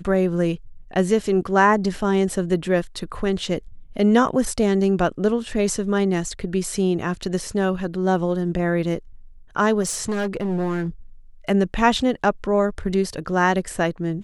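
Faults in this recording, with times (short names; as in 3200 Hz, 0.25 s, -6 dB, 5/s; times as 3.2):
9.81–10.88 clipped -20 dBFS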